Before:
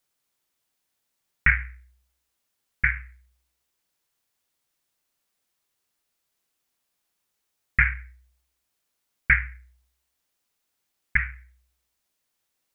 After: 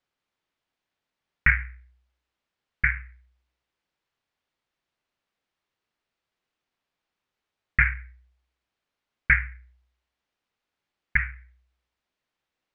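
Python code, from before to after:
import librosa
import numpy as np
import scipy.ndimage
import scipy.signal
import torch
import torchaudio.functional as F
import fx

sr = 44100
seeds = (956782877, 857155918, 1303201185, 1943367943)

y = scipy.signal.sosfilt(scipy.signal.butter(2, 3300.0, 'lowpass', fs=sr, output='sos'), x)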